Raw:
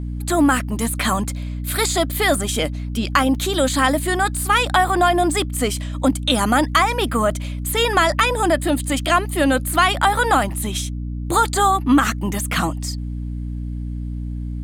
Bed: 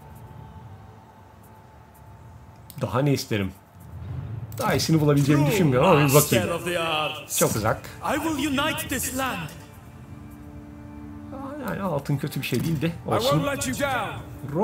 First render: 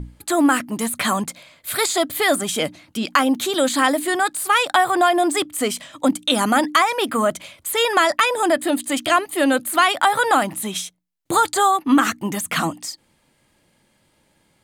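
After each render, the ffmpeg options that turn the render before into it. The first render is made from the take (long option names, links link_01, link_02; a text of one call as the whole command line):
ffmpeg -i in.wav -af "bandreject=frequency=60:width_type=h:width=6,bandreject=frequency=120:width_type=h:width=6,bandreject=frequency=180:width_type=h:width=6,bandreject=frequency=240:width_type=h:width=6,bandreject=frequency=300:width_type=h:width=6" out.wav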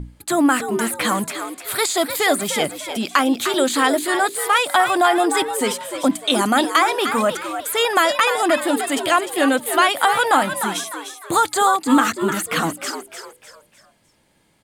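ffmpeg -i in.wav -filter_complex "[0:a]asplit=5[link_01][link_02][link_03][link_04][link_05];[link_02]adelay=302,afreqshift=100,volume=-8.5dB[link_06];[link_03]adelay=604,afreqshift=200,volume=-16.9dB[link_07];[link_04]adelay=906,afreqshift=300,volume=-25.3dB[link_08];[link_05]adelay=1208,afreqshift=400,volume=-33.7dB[link_09];[link_01][link_06][link_07][link_08][link_09]amix=inputs=5:normalize=0" out.wav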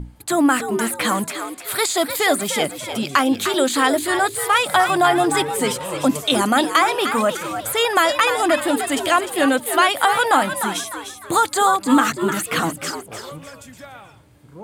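ffmpeg -i in.wav -i bed.wav -filter_complex "[1:a]volume=-14.5dB[link_01];[0:a][link_01]amix=inputs=2:normalize=0" out.wav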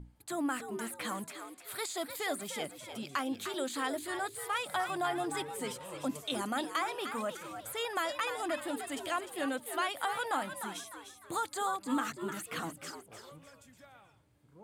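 ffmpeg -i in.wav -af "volume=-17.5dB" out.wav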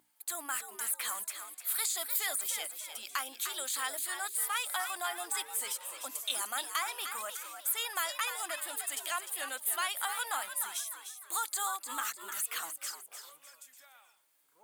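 ffmpeg -i in.wav -af "highpass=950,aemphasis=mode=production:type=50fm" out.wav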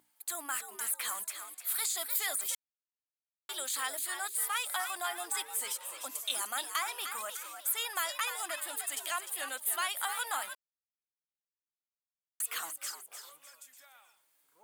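ffmpeg -i in.wav -filter_complex "[0:a]asettb=1/sr,asplit=3[link_01][link_02][link_03];[link_01]atrim=end=1.104[link_04];[link_02]atrim=start=1.1:end=2,asetpts=PTS-STARTPTS,afade=type=in:duration=0.004:curve=qsin,afade=type=out:start_time=0.896:duration=0.004:curve=qsin,volume=24.5dB,asoftclip=hard,volume=-24.5dB[link_05];[link_03]atrim=start=1.996[link_06];[link_04][link_05]acrossfade=duration=0.004:curve1=hsin:curve2=qsin[link_07];[link_07][link_06]acrossfade=duration=0.004:curve1=qsin:curve2=hsin,asplit=5[link_08][link_09][link_10][link_11][link_12];[link_08]atrim=end=2.55,asetpts=PTS-STARTPTS,afade=type=out:start_time=2.546:duration=0.004:curve=hsin[link_13];[link_09]atrim=start=2.55:end=3.49,asetpts=PTS-STARTPTS,volume=0[link_14];[link_10]atrim=start=3.49:end=10.55,asetpts=PTS-STARTPTS,afade=type=in:duration=0.004:curve=hsin,afade=type=out:start_time=7.056:duration=0.004:curve=hsin[link_15];[link_11]atrim=start=10.55:end=12.4,asetpts=PTS-STARTPTS,volume=0[link_16];[link_12]atrim=start=12.4,asetpts=PTS-STARTPTS,afade=type=in:duration=0.004:curve=hsin[link_17];[link_13][link_14][link_15][link_16][link_17]concat=n=5:v=0:a=1" out.wav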